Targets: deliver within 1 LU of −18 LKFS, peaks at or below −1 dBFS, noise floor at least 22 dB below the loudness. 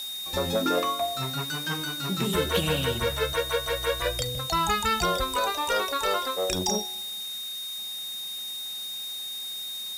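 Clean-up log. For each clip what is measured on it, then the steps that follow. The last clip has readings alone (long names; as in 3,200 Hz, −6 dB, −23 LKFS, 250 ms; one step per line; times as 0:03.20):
interfering tone 3,700 Hz; level of the tone −33 dBFS; background noise floor −35 dBFS; target noise floor −50 dBFS; integrated loudness −27.5 LKFS; sample peak −11.0 dBFS; target loudness −18.0 LKFS
→ notch filter 3,700 Hz, Q 30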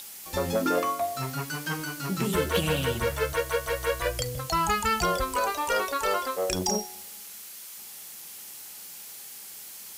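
interfering tone none found; background noise floor −43 dBFS; target noise floor −50 dBFS
→ broadband denoise 7 dB, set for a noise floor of −43 dBFS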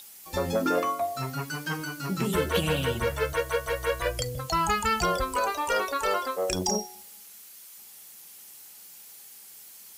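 background noise floor −48 dBFS; target noise floor −50 dBFS
→ broadband denoise 6 dB, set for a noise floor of −48 dBFS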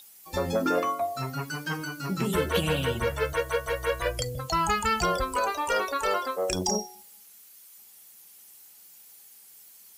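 background noise floor −52 dBFS; integrated loudness −28.0 LKFS; sample peak −11.5 dBFS; target loudness −18.0 LKFS
→ level +10 dB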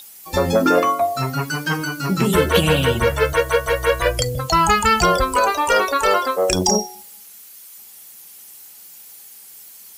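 integrated loudness −18.0 LKFS; sample peak −1.5 dBFS; background noise floor −42 dBFS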